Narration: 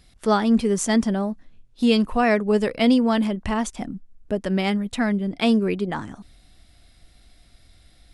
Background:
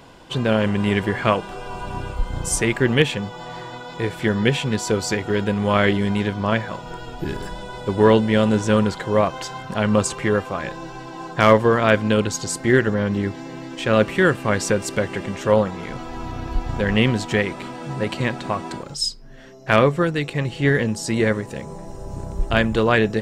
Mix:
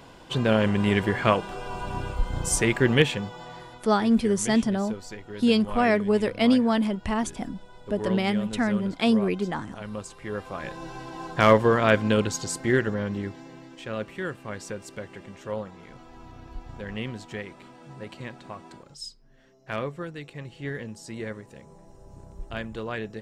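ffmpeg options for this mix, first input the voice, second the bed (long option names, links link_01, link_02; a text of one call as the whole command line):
ffmpeg -i stem1.wav -i stem2.wav -filter_complex "[0:a]adelay=3600,volume=-2.5dB[link_01];[1:a]volume=11.5dB,afade=type=out:start_time=2.98:duration=0.98:silence=0.177828,afade=type=in:start_time=10.21:duration=0.72:silence=0.199526,afade=type=out:start_time=12.12:duration=1.84:silence=0.251189[link_02];[link_01][link_02]amix=inputs=2:normalize=0" out.wav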